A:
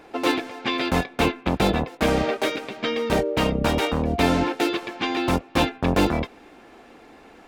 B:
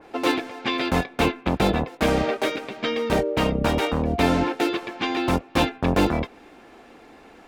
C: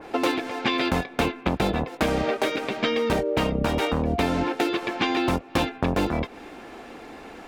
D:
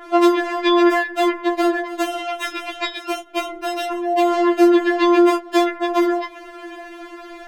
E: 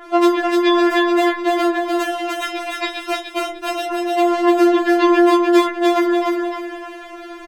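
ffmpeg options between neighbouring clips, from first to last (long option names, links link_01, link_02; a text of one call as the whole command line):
ffmpeg -i in.wav -af "adynamicequalizer=threshold=0.0141:dfrequency=2600:dqfactor=0.7:tfrequency=2600:tqfactor=0.7:attack=5:release=100:ratio=0.375:range=1.5:mode=cutabove:tftype=highshelf" out.wav
ffmpeg -i in.wav -af "acompressor=threshold=-27dB:ratio=6,volume=6.5dB" out.wav
ffmpeg -i in.wav -af "afftfilt=real='re*4*eq(mod(b,16),0)':imag='im*4*eq(mod(b,16),0)':win_size=2048:overlap=0.75,volume=6dB" out.wav
ffmpeg -i in.wav -af "aecho=1:1:300|600|900|1200:0.708|0.219|0.068|0.0211" out.wav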